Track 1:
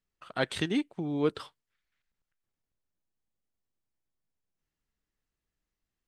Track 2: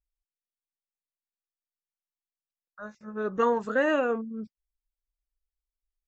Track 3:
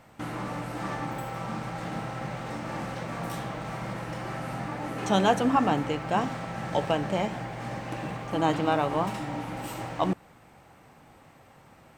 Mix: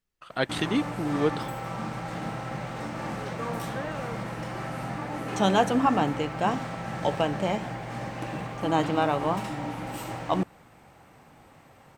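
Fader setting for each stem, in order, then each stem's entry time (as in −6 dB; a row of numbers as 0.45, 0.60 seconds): +2.5, −12.5, +0.5 decibels; 0.00, 0.00, 0.30 seconds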